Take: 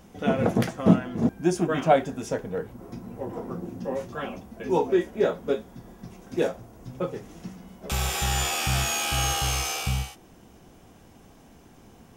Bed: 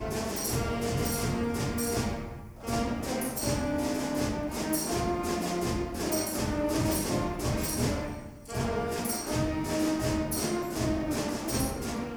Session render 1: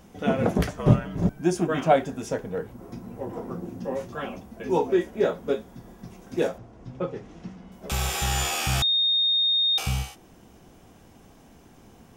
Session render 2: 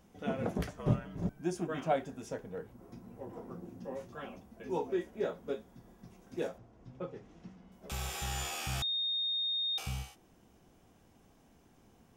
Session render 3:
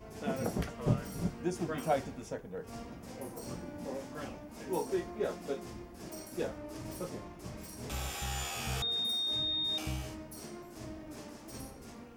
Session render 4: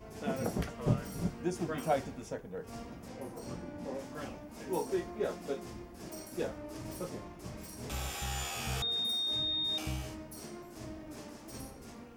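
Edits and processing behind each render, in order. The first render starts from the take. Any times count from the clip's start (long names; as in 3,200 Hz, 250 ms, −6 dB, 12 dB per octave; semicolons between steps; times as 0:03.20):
0:00.58–0:01.39: frequency shifter −59 Hz; 0:06.58–0:07.72: high-frequency loss of the air 110 metres; 0:08.82–0:09.78: beep over 3,690 Hz −19 dBFS
level −11.5 dB
mix in bed −16 dB
0:03.08–0:03.99: high-shelf EQ 8,000 Hz −10 dB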